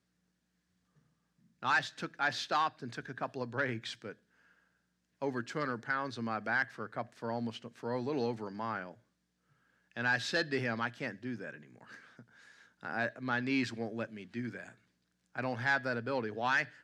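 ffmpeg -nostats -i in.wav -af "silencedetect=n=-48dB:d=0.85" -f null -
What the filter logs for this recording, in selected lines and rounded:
silence_start: 0.00
silence_end: 1.62 | silence_duration: 1.62
silence_start: 4.13
silence_end: 5.22 | silence_duration: 1.09
silence_start: 8.94
silence_end: 9.97 | silence_duration: 1.03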